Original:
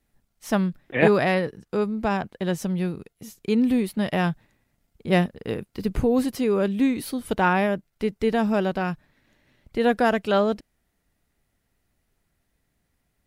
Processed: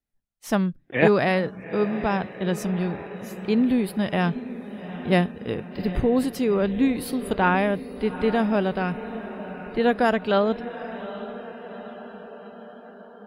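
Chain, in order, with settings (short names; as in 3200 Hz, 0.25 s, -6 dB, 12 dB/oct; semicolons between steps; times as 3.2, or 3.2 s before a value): diffused feedback echo 0.808 s, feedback 61%, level -13 dB; spectral noise reduction 17 dB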